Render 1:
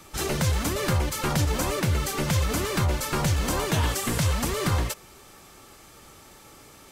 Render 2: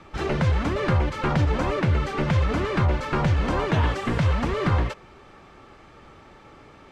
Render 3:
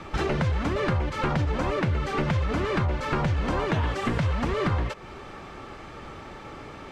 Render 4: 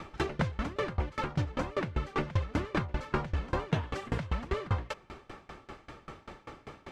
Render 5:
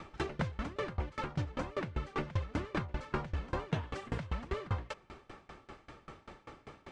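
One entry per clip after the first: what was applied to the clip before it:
LPF 2400 Hz 12 dB/oct; gain +3 dB
compressor 4:1, threshold -32 dBFS, peak gain reduction 12.5 dB; gain +7.5 dB
dB-ramp tremolo decaying 5.1 Hz, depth 25 dB
downsampling 22050 Hz; gain -4.5 dB

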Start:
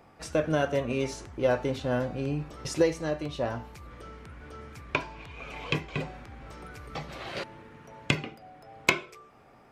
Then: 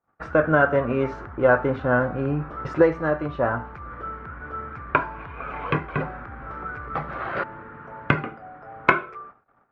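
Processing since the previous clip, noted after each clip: synth low-pass 1400 Hz, resonance Q 3.6; gate -49 dBFS, range -36 dB; gain +5.5 dB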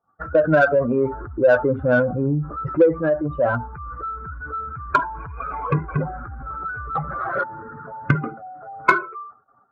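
spectral contrast raised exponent 2.1; in parallel at -3.5 dB: soft clip -17.5 dBFS, distortion -10 dB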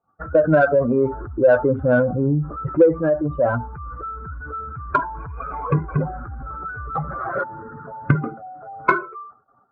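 LPF 1100 Hz 6 dB/oct; gain +2 dB

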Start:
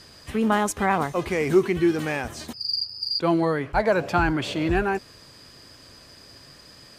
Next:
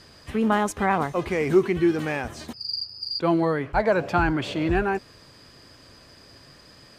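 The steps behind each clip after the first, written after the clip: high shelf 4600 Hz -6.5 dB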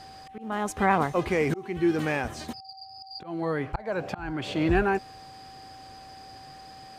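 auto swell 0.464 s; whine 770 Hz -45 dBFS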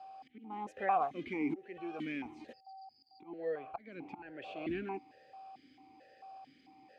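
vowel sequencer 4.5 Hz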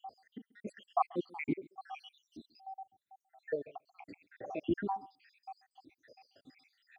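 random spectral dropouts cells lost 81%; echo 0.136 s -23.5 dB; gain +8 dB

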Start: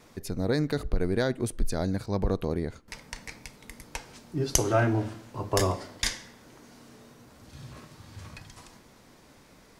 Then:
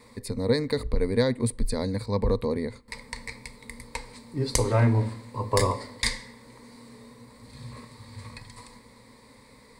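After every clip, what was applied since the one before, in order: ripple EQ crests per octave 0.96, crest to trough 13 dB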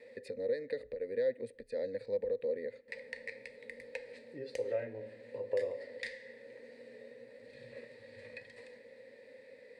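compressor 3:1, threshold -35 dBFS, peak gain reduction 13.5 dB; vowel filter e; gain +8.5 dB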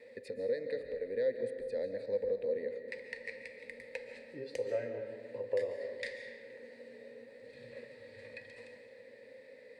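digital reverb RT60 1.7 s, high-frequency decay 0.65×, pre-delay 0.1 s, DRR 7 dB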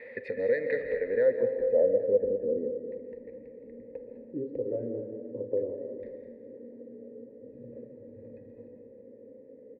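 low-pass sweep 2000 Hz -> 320 Hz, 0.97–2.3; feedback echo 0.205 s, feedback 58%, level -14 dB; gain +7 dB

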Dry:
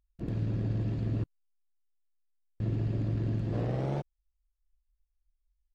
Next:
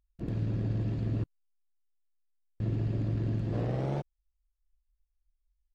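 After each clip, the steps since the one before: nothing audible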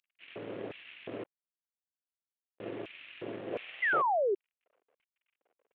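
CVSD 16 kbps; LFO high-pass square 1.4 Hz 470–2500 Hz; painted sound fall, 3.82–4.35, 370–2100 Hz -28 dBFS

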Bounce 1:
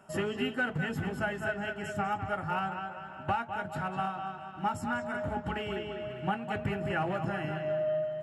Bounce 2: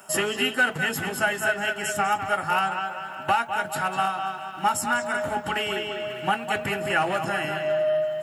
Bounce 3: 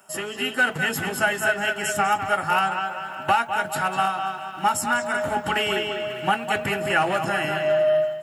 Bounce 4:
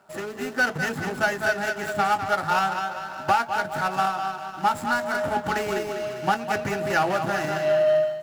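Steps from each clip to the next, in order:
RIAA curve recording; gain +9 dB
AGC gain up to 11.5 dB; gain -6.5 dB
median filter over 15 samples

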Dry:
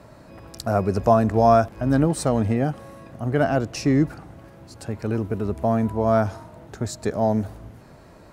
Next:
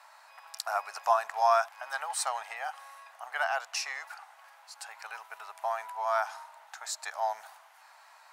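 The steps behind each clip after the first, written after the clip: elliptic high-pass 810 Hz, stop band 60 dB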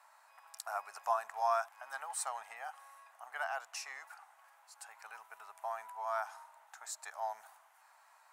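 EQ curve 330 Hz 0 dB, 530 Hz -6 dB, 1100 Hz -4 dB, 4600 Hz -10 dB, 7900 Hz -2 dB; gain -3 dB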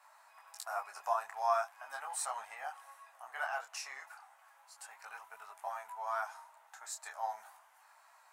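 detuned doubles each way 13 cents; gain +4.5 dB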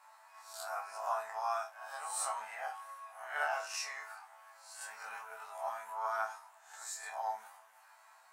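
spectral swells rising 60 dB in 0.51 s; vocal rider within 4 dB 2 s; resonator bank D2 fifth, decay 0.25 s; gain +8 dB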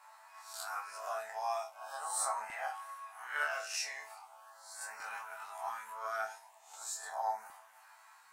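LFO notch saw up 0.4 Hz 300–3600 Hz; gain +2.5 dB

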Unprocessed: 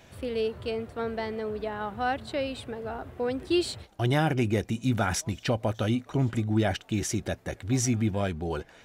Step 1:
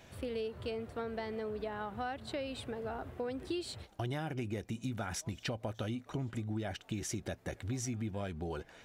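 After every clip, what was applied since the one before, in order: compressor, threshold -32 dBFS, peak gain reduction 12 dB; gain -3 dB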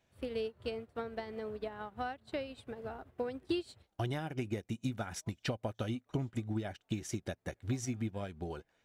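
upward expander 2.5:1, over -49 dBFS; gain +5.5 dB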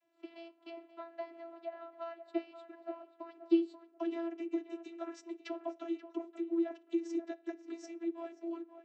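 tape echo 0.534 s, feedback 21%, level -9.5 dB, low-pass 1900 Hz; reverb RT60 0.60 s, pre-delay 6 ms, DRR 17 dB; vocoder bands 32, saw 335 Hz

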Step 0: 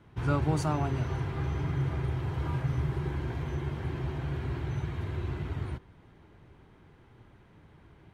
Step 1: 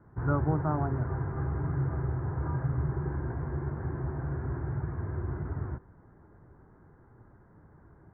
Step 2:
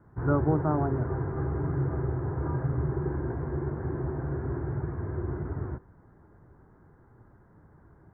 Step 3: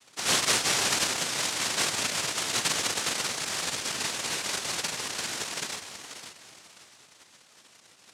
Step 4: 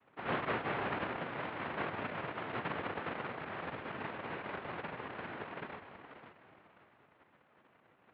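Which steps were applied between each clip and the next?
steep low-pass 1700 Hz 48 dB/oct
dynamic EQ 390 Hz, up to +7 dB, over -45 dBFS, Q 0.97
thinning echo 0.535 s, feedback 41%, high-pass 160 Hz, level -6 dB; noise vocoder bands 1
Gaussian blur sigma 4.5 samples; gain -2.5 dB

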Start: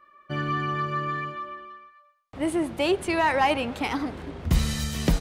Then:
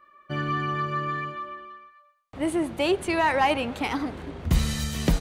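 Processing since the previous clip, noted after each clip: notch 5200 Hz, Q 21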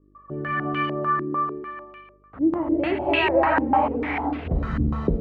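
non-linear reverb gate 0.36 s rising, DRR -2 dB; buzz 50 Hz, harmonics 9, -57 dBFS -5 dB/oct; stepped low-pass 6.7 Hz 320–2600 Hz; gain -4 dB

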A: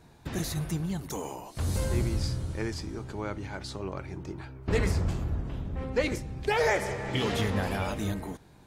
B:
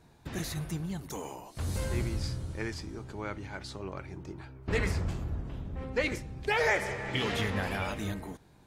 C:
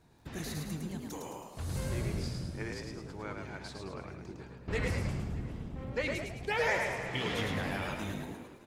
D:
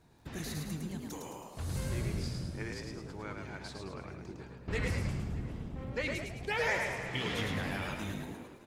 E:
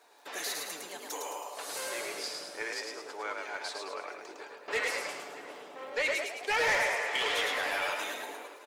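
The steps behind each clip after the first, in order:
dynamic EQ 2100 Hz, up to +6 dB, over -45 dBFS, Q 0.85; gain -4 dB
frequency-shifting echo 0.107 s, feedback 47%, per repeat +51 Hz, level -4 dB; crackle 39/s -54 dBFS; echo 0.614 s -22 dB; gain -4.5 dB
dynamic EQ 630 Hz, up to -3 dB, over -44 dBFS, Q 0.77
HPF 480 Hz 24 dB/oct; comb 6.9 ms, depth 33%; soft clip -31.5 dBFS, distortion -12 dB; gain +8.5 dB

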